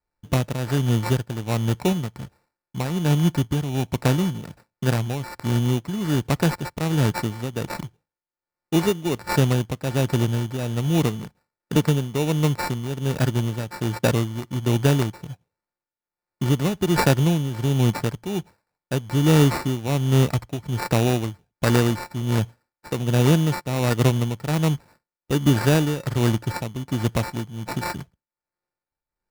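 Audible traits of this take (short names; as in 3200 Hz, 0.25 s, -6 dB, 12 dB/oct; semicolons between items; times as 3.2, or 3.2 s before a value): a buzz of ramps at a fixed pitch in blocks of 8 samples; tremolo triangle 1.3 Hz, depth 75%; aliases and images of a low sample rate 3200 Hz, jitter 0%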